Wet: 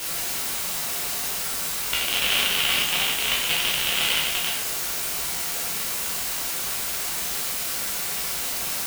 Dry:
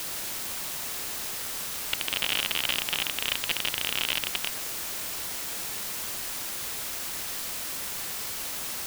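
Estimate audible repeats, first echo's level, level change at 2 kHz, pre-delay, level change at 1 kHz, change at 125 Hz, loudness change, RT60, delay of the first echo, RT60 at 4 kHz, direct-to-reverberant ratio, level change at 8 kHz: no echo audible, no echo audible, +6.5 dB, 6 ms, +6.5 dB, +5.5 dB, +6.0 dB, 0.55 s, no echo audible, 0.50 s, −5.0 dB, +6.5 dB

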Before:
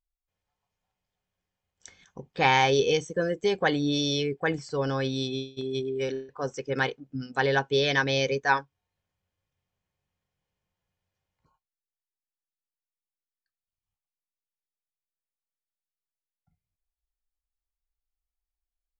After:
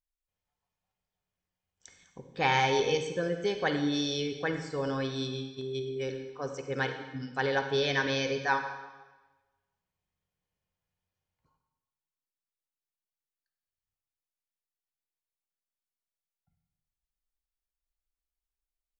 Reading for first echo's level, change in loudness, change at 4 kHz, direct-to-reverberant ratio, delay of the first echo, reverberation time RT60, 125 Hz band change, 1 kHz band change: no echo audible, −4.0 dB, −4.0 dB, 6.0 dB, no echo audible, 1.2 s, −4.5 dB, −4.0 dB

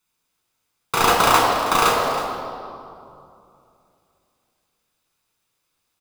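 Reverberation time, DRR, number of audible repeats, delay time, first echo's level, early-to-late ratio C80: 2.6 s, −1.5 dB, 1, 321 ms, −13.5 dB, 2.0 dB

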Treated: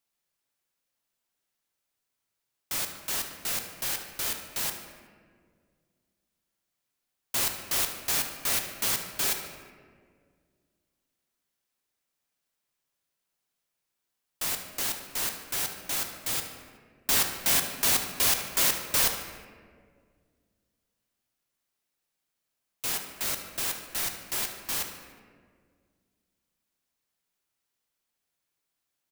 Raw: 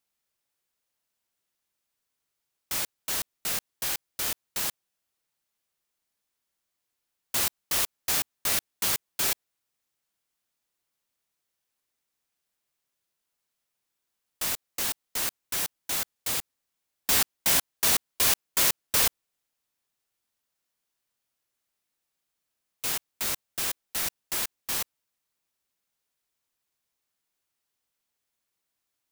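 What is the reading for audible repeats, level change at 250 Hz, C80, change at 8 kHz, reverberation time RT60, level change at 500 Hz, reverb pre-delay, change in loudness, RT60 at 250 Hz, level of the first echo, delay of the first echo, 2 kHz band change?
2, +0.5 dB, 8.0 dB, −1.0 dB, 1.9 s, +0.5 dB, 3 ms, −1.0 dB, 2.6 s, −13.0 dB, 74 ms, 0.0 dB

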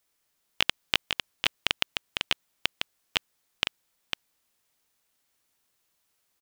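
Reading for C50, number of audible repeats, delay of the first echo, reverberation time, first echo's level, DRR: no reverb audible, 1, 502 ms, no reverb audible, −5.5 dB, no reverb audible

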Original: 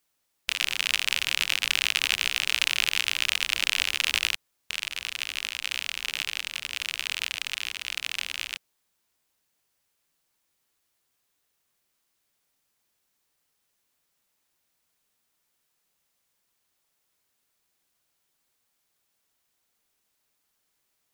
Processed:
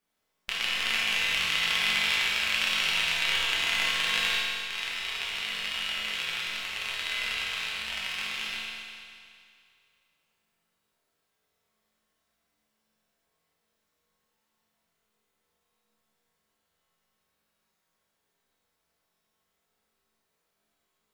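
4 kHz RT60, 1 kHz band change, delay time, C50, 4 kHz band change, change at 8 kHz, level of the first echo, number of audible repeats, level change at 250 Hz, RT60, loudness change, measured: 2.2 s, +4.0 dB, no echo audible, −2.0 dB, −0.5 dB, −5.0 dB, no echo audible, no echo audible, +7.0 dB, 2.3 s, −0.5 dB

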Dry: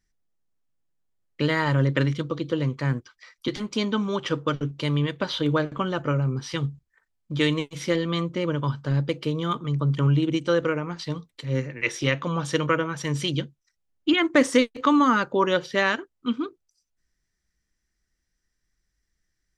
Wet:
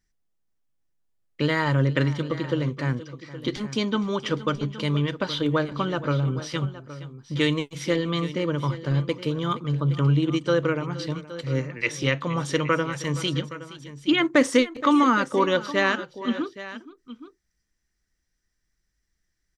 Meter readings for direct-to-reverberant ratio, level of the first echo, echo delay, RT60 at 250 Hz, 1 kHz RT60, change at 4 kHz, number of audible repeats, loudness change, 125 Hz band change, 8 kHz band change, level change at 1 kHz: no reverb audible, −17.0 dB, 470 ms, no reverb audible, no reverb audible, 0.0 dB, 2, 0.0 dB, 0.0 dB, 0.0 dB, 0.0 dB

